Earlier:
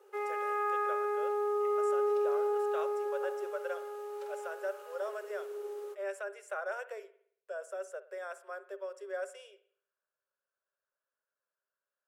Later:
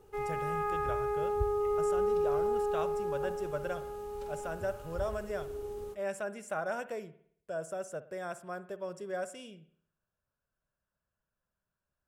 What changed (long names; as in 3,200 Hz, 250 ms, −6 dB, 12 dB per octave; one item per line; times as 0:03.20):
background −4.0 dB
master: remove Chebyshev high-pass with heavy ripple 380 Hz, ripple 6 dB